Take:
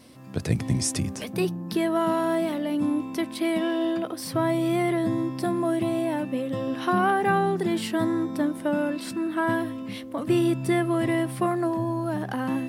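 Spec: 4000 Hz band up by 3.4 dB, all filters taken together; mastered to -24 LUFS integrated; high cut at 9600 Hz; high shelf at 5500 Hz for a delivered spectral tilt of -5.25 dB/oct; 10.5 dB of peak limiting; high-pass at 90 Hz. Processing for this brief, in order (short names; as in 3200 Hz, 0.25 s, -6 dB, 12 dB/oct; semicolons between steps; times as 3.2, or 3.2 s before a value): HPF 90 Hz; LPF 9600 Hz; bell 4000 Hz +3 dB; high shelf 5500 Hz +4 dB; gain +5 dB; limiter -15.5 dBFS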